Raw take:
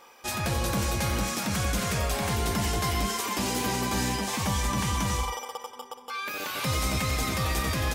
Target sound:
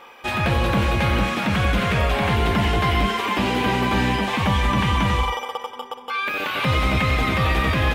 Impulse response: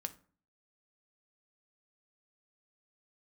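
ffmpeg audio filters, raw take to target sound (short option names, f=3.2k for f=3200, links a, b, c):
-filter_complex "[0:a]acrossover=split=4800[a][b];[b]acompressor=threshold=-41dB:ratio=4:attack=1:release=60[c];[a][c]amix=inputs=2:normalize=0,highshelf=f=4.1k:t=q:w=1.5:g=-9.5,volume=8dB"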